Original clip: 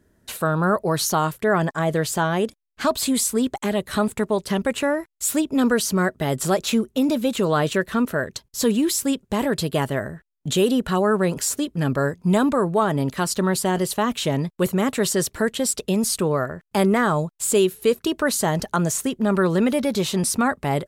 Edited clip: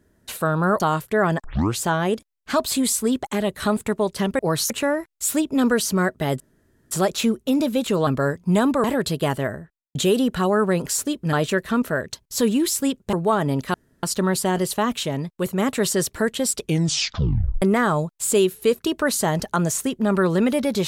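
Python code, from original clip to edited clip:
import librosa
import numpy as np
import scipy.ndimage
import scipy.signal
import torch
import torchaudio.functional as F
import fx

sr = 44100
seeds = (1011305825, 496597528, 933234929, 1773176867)

y = fx.studio_fade_out(x, sr, start_s=9.95, length_s=0.52)
y = fx.edit(y, sr, fx.move(start_s=0.8, length_s=0.31, to_s=4.7),
    fx.tape_start(start_s=1.75, length_s=0.35),
    fx.insert_room_tone(at_s=6.4, length_s=0.51),
    fx.swap(start_s=7.56, length_s=1.8, other_s=11.85, other_length_s=0.77),
    fx.insert_room_tone(at_s=13.23, length_s=0.29),
    fx.clip_gain(start_s=14.23, length_s=0.55, db=-3.5),
    fx.tape_stop(start_s=15.77, length_s=1.05), tone=tone)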